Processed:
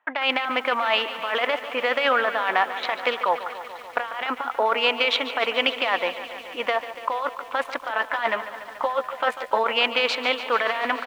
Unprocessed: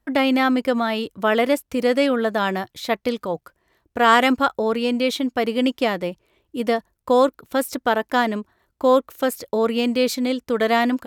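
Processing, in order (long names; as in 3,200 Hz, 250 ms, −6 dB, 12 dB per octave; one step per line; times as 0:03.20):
adaptive Wiener filter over 9 samples
Chebyshev band-pass filter 900–3,000 Hz, order 2
compressor whose output falls as the input rises −31 dBFS, ratio −1
0:07.92–0:09.64: double-tracking delay 13 ms −5 dB
single-tap delay 926 ms −23 dB
feedback echo at a low word length 144 ms, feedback 80%, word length 9 bits, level −13 dB
level +7.5 dB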